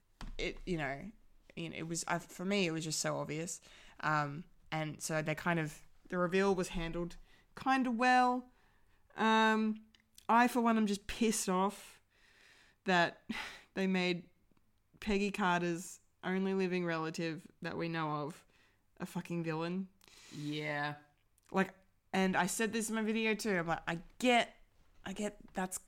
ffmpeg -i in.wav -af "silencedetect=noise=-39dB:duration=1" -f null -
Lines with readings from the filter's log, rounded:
silence_start: 11.72
silence_end: 12.86 | silence_duration: 1.14